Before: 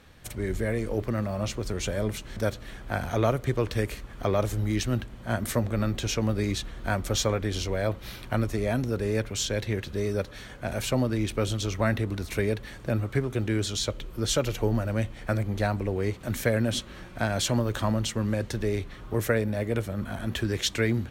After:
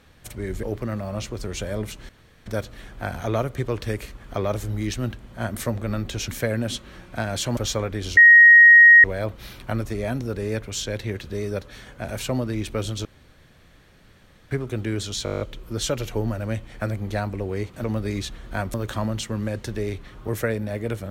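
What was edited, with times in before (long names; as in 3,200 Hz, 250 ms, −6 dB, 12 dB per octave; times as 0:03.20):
0:00.63–0:00.89: remove
0:02.35: splice in room tone 0.37 s
0:06.17–0:07.07: swap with 0:16.31–0:17.60
0:07.67: insert tone 1,880 Hz −6.5 dBFS 0.87 s
0:11.68–0:13.14: fill with room tone
0:13.87: stutter 0.02 s, 9 plays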